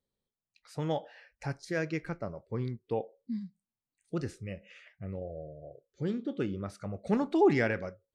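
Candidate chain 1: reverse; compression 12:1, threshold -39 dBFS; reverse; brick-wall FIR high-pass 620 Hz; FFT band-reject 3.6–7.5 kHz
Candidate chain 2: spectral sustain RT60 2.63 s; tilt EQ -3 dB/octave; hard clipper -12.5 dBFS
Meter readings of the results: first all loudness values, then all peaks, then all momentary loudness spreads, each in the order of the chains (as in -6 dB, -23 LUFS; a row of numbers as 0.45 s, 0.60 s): -53.5 LUFS, -25.0 LUFS; -34.5 dBFS, -12.5 dBFS; 15 LU, 16 LU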